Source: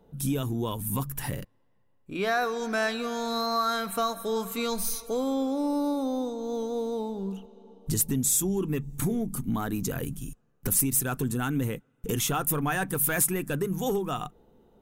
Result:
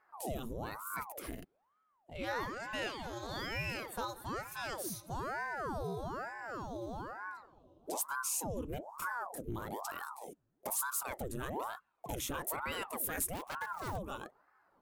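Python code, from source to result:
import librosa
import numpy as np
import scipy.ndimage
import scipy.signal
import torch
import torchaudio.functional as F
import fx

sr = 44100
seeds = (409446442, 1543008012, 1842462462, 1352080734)

y = fx.self_delay(x, sr, depth_ms=0.3, at=(13.33, 13.98))
y = fx.ring_lfo(y, sr, carrier_hz=700.0, swing_pct=85, hz=1.1)
y = F.gain(torch.from_numpy(y), -8.5).numpy()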